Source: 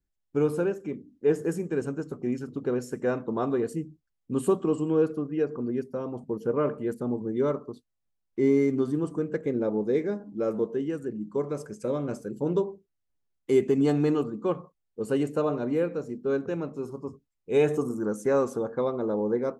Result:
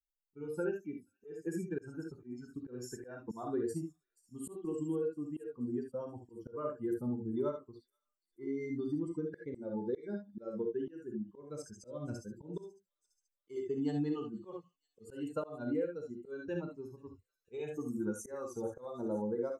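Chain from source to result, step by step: per-bin expansion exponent 2; compressor 12:1, threshold -34 dBFS, peak gain reduction 16.5 dB; non-linear reverb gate 90 ms rising, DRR 3.5 dB; auto swell 0.236 s; thin delay 0.48 s, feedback 62%, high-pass 4900 Hz, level -18 dB; gain +2 dB

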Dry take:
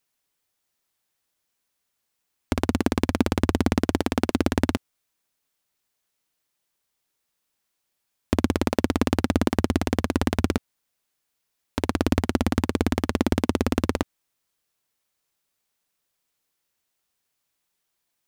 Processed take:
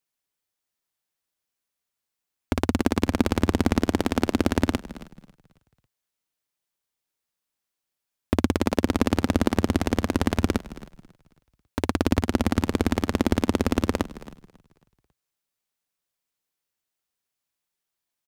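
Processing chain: frequency-shifting echo 0.273 s, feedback 45%, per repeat -33 Hz, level -17 dB; gate -44 dBFS, range -7 dB

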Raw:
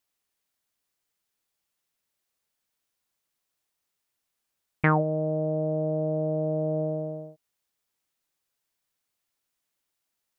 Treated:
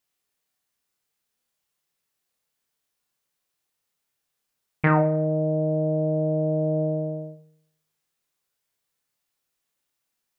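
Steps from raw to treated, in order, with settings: flutter echo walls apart 5 m, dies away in 0.28 s; reverb RT60 0.70 s, pre-delay 3 ms, DRR 9 dB

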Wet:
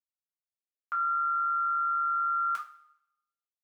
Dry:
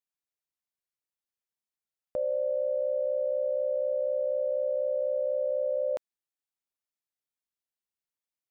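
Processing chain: gate with hold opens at -24 dBFS; tilt +1.5 dB/oct; notch 800 Hz, Q 22; reverb, pre-delay 3 ms, DRR -2.5 dB; speed mistake 33 rpm record played at 78 rpm

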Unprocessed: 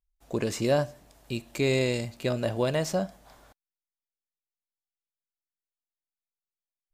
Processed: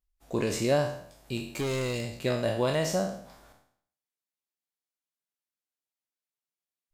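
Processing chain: spectral trails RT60 0.61 s; 1.37–2.19 hard clip -25.5 dBFS, distortion -13 dB; gain -1.5 dB; Vorbis 96 kbps 44100 Hz

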